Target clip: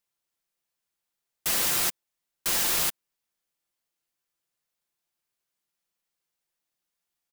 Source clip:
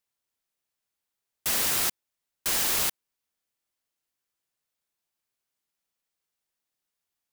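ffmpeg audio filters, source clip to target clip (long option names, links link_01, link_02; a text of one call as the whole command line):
ffmpeg -i in.wav -af "aecho=1:1:5.8:0.31" out.wav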